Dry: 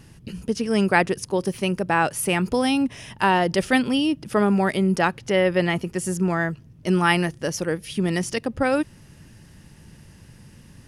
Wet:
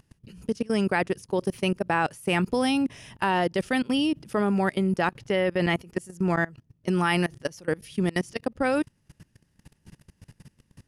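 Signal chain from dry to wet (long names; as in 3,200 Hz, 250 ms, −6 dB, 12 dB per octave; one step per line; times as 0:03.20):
output level in coarse steps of 23 dB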